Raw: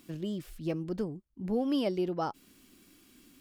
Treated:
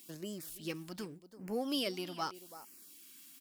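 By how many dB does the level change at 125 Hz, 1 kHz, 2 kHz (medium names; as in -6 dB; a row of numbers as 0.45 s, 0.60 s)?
-10.5 dB, -4.0 dB, +2.0 dB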